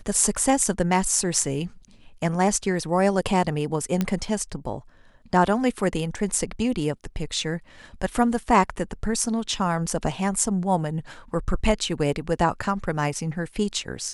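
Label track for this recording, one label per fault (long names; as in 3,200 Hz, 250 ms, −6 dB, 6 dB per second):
4.010000	4.010000	click −10 dBFS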